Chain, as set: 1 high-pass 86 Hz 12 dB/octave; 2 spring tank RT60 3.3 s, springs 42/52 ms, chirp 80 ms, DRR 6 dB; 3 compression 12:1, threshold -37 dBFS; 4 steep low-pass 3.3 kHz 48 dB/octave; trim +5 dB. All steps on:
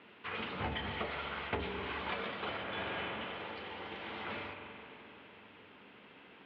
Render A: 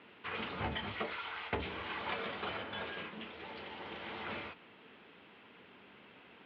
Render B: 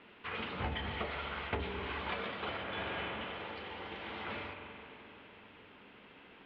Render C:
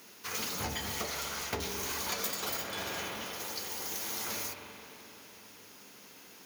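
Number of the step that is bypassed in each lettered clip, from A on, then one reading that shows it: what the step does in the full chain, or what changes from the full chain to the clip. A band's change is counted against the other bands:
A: 2, crest factor change +1.5 dB; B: 1, 125 Hz band +2.5 dB; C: 4, 4 kHz band +6.0 dB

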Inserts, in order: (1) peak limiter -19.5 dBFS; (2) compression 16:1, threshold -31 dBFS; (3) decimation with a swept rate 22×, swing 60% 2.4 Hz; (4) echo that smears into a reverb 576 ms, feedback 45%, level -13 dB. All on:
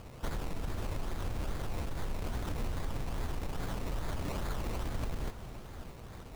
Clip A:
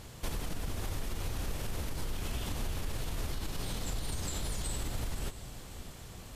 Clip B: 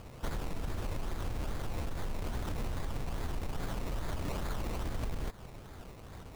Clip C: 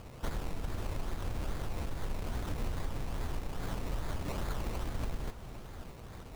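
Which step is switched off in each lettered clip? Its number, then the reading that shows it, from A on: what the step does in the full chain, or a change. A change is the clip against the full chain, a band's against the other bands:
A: 3, distortion -7 dB; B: 4, echo-to-direct -12.0 dB to none; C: 1, mean gain reduction 2.5 dB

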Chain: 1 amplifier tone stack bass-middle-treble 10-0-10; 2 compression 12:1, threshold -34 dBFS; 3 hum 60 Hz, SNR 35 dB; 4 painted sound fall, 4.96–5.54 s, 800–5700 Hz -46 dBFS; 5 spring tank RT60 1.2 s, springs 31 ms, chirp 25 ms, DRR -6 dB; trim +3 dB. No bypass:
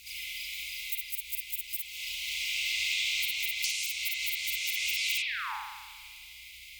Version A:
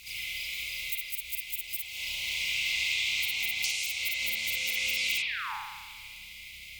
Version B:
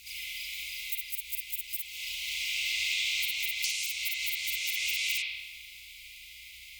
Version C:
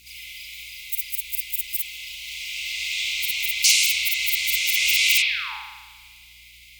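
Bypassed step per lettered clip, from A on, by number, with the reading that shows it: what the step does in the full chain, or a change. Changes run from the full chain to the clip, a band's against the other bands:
1, 2 kHz band +2.0 dB; 4, momentary loudness spread change +1 LU; 2, mean gain reduction 4.5 dB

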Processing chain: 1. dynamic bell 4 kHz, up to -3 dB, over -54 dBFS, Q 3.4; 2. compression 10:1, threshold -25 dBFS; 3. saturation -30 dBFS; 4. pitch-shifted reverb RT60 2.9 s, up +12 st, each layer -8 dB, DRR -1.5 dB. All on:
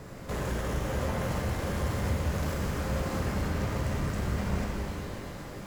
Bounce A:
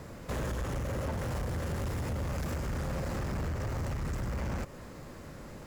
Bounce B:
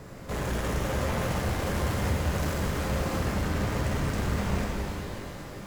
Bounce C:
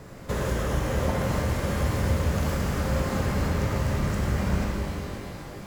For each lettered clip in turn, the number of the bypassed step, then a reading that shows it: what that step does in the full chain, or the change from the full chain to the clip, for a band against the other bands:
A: 4, momentary loudness spread change +5 LU; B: 2, mean gain reduction 6.0 dB; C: 3, distortion -10 dB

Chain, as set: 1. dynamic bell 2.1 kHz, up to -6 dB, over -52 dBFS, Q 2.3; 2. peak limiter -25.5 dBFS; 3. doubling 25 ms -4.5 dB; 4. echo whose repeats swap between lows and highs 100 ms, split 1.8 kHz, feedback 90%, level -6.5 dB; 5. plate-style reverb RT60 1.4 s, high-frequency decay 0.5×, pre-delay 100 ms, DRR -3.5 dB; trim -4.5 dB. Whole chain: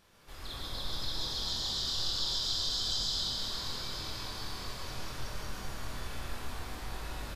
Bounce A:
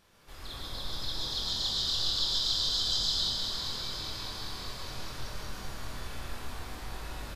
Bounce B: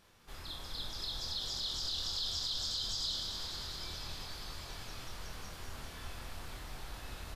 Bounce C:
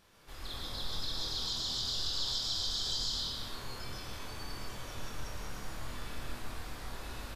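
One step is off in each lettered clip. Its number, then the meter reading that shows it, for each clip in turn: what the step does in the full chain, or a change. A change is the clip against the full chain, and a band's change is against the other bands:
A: 2, crest factor change +1.5 dB; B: 5, echo-to-direct 6.0 dB to -2.0 dB; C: 4, loudness change -2.0 LU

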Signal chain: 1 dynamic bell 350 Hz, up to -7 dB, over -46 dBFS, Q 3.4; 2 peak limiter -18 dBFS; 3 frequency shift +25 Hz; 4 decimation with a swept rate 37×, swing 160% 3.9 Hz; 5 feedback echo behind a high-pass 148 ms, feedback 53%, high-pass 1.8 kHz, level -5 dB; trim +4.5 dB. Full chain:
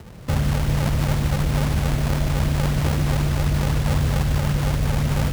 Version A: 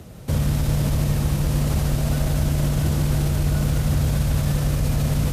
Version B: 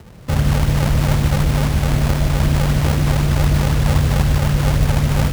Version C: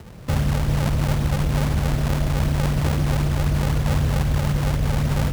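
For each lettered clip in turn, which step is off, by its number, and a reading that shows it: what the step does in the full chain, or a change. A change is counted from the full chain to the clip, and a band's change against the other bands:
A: 4, distortion -6 dB; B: 2, mean gain reduction 4.0 dB; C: 5, echo-to-direct -7.5 dB to none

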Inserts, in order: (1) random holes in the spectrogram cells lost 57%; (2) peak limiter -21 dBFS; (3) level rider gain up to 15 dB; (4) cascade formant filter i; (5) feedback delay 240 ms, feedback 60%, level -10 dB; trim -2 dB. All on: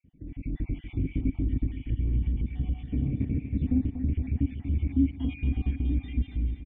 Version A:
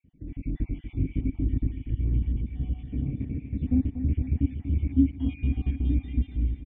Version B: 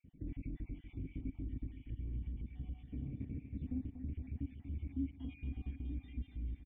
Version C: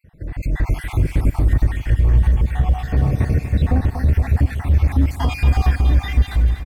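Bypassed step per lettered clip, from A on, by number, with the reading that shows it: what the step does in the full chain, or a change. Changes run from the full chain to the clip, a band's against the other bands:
2, mean gain reduction 3.0 dB; 3, momentary loudness spread change -2 LU; 4, 250 Hz band -12.5 dB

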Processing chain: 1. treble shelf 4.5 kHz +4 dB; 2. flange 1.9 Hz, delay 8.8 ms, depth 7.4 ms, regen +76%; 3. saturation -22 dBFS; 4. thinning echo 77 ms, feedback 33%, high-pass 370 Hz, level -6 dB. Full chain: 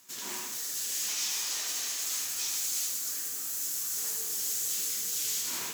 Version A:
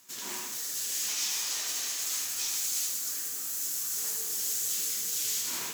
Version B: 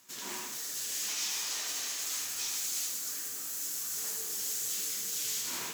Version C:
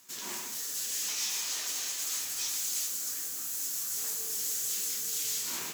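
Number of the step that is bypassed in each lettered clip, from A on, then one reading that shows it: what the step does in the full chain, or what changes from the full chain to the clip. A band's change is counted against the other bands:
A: 3, distortion -25 dB; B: 1, 8 kHz band -2.5 dB; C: 4, crest factor change -1.5 dB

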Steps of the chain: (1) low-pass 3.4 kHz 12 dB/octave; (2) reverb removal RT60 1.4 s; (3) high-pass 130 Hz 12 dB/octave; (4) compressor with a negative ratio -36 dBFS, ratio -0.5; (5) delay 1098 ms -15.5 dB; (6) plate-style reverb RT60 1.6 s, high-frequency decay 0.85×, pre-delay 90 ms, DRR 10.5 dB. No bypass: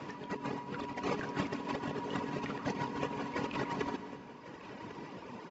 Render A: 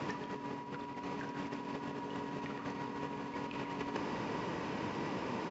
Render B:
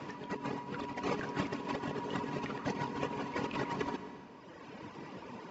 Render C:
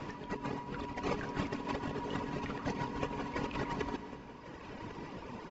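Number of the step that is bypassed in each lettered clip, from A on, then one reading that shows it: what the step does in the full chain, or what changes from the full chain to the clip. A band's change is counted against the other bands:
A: 2, crest factor change -4.0 dB; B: 5, momentary loudness spread change +1 LU; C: 3, 125 Hz band +2.5 dB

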